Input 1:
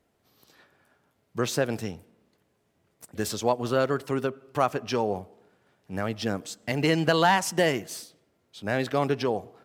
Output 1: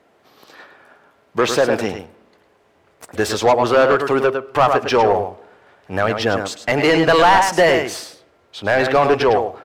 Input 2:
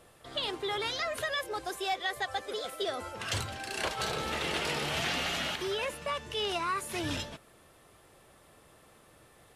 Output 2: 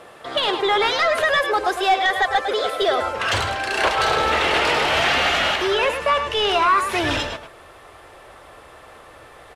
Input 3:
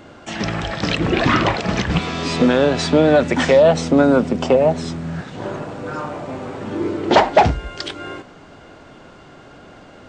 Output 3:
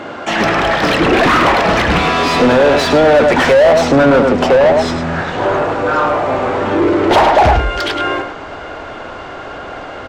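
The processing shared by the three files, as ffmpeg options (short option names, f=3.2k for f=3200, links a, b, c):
-filter_complex "[0:a]asplit=2[a][b];[b]adelay=105,volume=-9dB,highshelf=f=4k:g=-2.36[c];[a][c]amix=inputs=2:normalize=0,asubboost=boost=10:cutoff=57,asplit=2[d][e];[e]highpass=f=720:p=1,volume=28dB,asoftclip=type=tanh:threshold=0dB[f];[d][f]amix=inputs=2:normalize=0,lowpass=f=1.4k:p=1,volume=-6dB,volume=-1dB"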